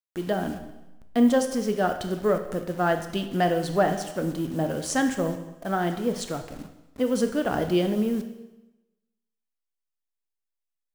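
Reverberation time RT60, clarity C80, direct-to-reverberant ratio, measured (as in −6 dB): 1.0 s, 12.0 dB, 7.0 dB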